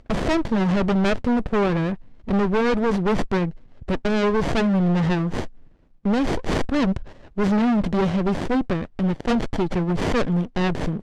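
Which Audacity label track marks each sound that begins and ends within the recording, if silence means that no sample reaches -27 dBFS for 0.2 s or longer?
2.280000	3.500000	sound
3.890000	5.460000	sound
6.050000	7.030000	sound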